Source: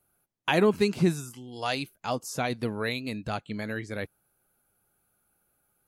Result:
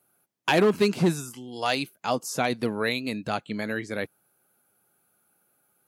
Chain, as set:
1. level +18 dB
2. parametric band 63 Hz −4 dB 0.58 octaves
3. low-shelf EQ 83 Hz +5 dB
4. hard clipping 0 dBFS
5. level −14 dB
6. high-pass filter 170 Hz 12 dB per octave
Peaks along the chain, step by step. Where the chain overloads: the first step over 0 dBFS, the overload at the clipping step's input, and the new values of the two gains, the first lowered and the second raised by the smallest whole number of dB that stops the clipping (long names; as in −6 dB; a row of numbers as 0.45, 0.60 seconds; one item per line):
+8.0, +8.0, +8.0, 0.0, −14.0, −8.5 dBFS
step 1, 8.0 dB
step 1 +10 dB, step 5 −6 dB